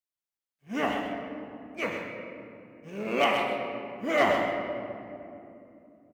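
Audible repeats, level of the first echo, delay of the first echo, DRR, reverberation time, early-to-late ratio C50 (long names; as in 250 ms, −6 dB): 1, −7.0 dB, 129 ms, 0.5 dB, 2.8 s, 2.0 dB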